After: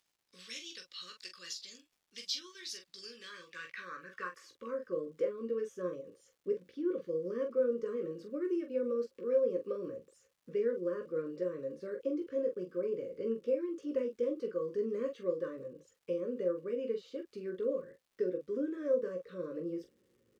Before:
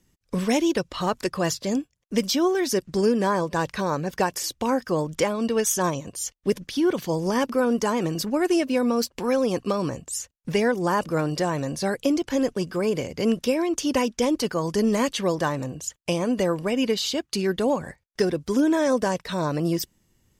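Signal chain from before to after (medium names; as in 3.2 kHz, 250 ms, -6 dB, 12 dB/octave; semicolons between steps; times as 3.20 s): Chebyshev band-stop 550–1100 Hz, order 4; reverse; upward compressor, threshold -38 dBFS; reverse; early reflections 17 ms -6 dB, 44 ms -7.5 dB; band-pass sweep 4.1 kHz -> 530 Hz, 3.09–5.06 s; crackle 450 per s -59 dBFS; trim -7 dB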